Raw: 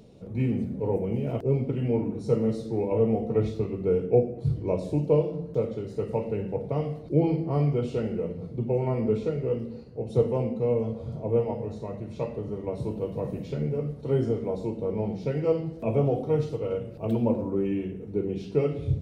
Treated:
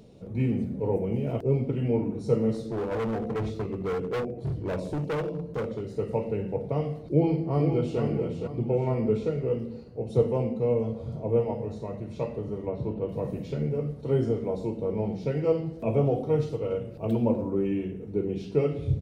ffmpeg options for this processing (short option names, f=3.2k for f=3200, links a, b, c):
-filter_complex "[0:a]asettb=1/sr,asplit=3[a][b][c];[a]atrim=end=2.544[d];[b]atrim=start=2.54:end=5.87,asetpts=PTS-STARTPTS,afade=t=in:d=0.004:c=qsin,afade=t=out:st=3.326:d=0.004:c=qsin,asoftclip=type=hard:threshold=-26.5dB[e];[c]atrim=start=5.866[f];[d][e]acrossfade=d=0.004:c1=hsin:c2=qsin[g];[g][f]acrossfade=d=0.004:c1=qsin:c2=hsin,asplit=2[h][i];[i]afade=t=in:st=7.06:d=0.01,afade=t=out:st=8:d=0.01,aecho=0:1:470|940|1410|1880|2350:0.473151|0.189261|0.0757042|0.0302817|0.0121127[j];[h][j]amix=inputs=2:normalize=0,asettb=1/sr,asplit=3[k][l][m];[k]atrim=end=12.674[n];[l]atrim=start=12.67:end=13.09,asetpts=PTS-STARTPTS,afade=t=in:d=0.004:c=qsin,afade=t=out:st=0.416:d=0.004:c=qsin,lowpass=2.9k[o];[m]atrim=start=13.086[p];[n][o]acrossfade=d=0.004:c1=hsin:c2=qsin[q];[q][p]acrossfade=d=0.004:c1=qsin:c2=hsin"